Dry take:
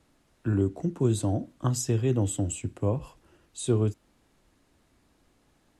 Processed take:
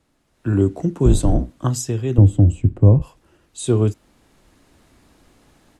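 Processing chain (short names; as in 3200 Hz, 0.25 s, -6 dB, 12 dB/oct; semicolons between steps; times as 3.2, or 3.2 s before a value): 1.05–1.5 octaver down 2 oct, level +4 dB; 2.18–3.02 tilt -4.5 dB/oct; AGC gain up to 12.5 dB; gain -1 dB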